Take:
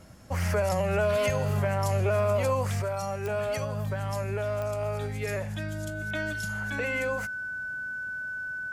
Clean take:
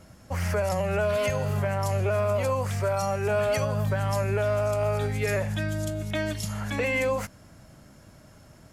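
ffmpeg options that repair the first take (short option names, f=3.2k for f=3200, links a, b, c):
-af "adeclick=t=4,bandreject=f=1.5k:w=30,asetnsamples=n=441:p=0,asendcmd='2.82 volume volume 5dB',volume=0dB"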